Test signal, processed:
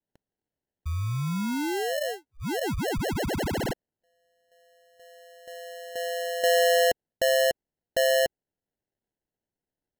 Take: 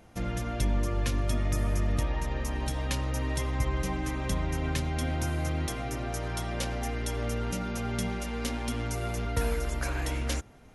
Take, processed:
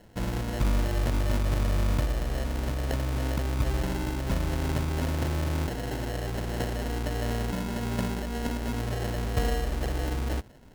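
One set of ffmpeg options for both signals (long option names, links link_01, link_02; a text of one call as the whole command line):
ffmpeg -i in.wav -af "asuperstop=centerf=990:order=8:qfactor=1.6,acrusher=samples=37:mix=1:aa=0.000001,volume=2dB" out.wav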